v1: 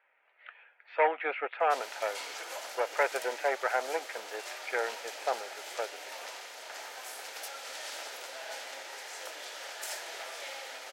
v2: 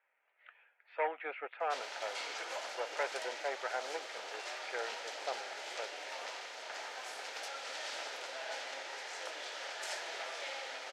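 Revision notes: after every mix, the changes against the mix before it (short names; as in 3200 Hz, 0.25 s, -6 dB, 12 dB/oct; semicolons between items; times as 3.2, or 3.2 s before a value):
speech -8.5 dB; master: add LPF 5900 Hz 12 dB/oct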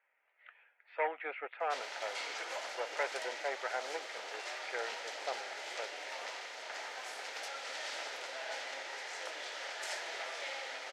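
master: add bell 2000 Hz +3.5 dB 0.26 oct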